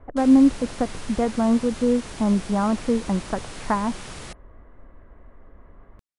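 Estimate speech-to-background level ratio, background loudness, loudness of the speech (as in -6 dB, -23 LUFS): 15.5 dB, -37.5 LUFS, -22.0 LUFS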